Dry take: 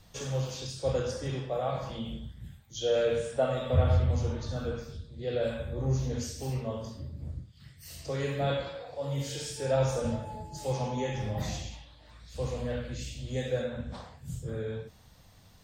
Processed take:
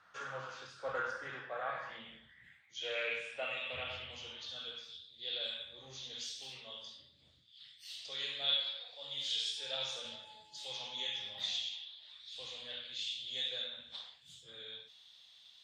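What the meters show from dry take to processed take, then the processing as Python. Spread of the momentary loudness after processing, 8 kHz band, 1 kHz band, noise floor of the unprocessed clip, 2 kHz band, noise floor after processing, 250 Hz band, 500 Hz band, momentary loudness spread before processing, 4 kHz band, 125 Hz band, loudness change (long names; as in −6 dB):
16 LU, −8.5 dB, −8.0 dB, −56 dBFS, +1.0 dB, −64 dBFS, −25.0 dB, −16.0 dB, 15 LU, +7.0 dB, −31.0 dB, −7.0 dB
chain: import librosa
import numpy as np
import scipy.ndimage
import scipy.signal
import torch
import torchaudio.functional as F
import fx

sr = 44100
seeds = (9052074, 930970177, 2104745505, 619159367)

y = fx.filter_sweep_bandpass(x, sr, from_hz=1400.0, to_hz=3500.0, start_s=0.99, end_s=4.89, q=6.7)
y = fx.doppler_dist(y, sr, depth_ms=0.11)
y = y * librosa.db_to_amplitude(13.0)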